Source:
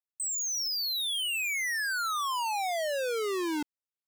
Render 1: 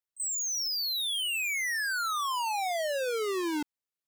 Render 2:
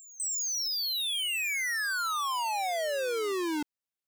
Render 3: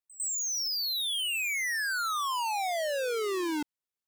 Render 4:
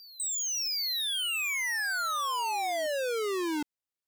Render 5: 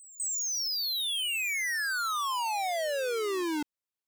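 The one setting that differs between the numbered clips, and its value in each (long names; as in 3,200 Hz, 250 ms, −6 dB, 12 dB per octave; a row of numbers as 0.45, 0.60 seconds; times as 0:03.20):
backwards echo, delay time: 33, 304, 102, 762, 199 milliseconds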